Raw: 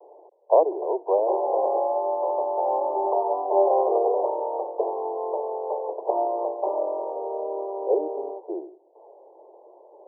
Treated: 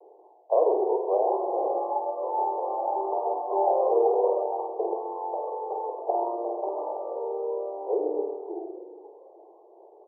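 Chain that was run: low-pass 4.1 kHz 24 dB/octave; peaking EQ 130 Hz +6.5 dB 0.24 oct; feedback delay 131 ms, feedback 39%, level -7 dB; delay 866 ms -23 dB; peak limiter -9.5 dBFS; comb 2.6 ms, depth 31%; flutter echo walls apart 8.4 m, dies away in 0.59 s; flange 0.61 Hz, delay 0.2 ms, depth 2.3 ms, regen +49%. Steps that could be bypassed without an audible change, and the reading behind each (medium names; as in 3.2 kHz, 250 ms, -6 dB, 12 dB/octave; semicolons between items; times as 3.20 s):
low-pass 4.1 kHz: input has nothing above 1.1 kHz; peaking EQ 130 Hz: input has nothing below 290 Hz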